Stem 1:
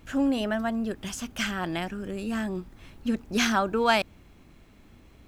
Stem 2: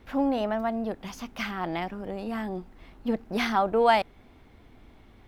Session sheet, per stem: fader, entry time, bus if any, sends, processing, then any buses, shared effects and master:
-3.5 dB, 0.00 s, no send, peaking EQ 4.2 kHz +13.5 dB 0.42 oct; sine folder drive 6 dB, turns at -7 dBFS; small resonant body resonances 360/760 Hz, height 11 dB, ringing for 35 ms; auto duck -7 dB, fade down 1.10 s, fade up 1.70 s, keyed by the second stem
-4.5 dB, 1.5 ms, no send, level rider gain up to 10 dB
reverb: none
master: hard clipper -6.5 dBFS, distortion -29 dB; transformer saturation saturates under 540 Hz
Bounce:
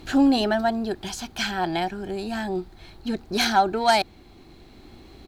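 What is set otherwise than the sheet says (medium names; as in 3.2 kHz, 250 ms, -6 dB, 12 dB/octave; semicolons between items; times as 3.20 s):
stem 2 -4.5 dB -> -10.5 dB; master: missing transformer saturation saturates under 540 Hz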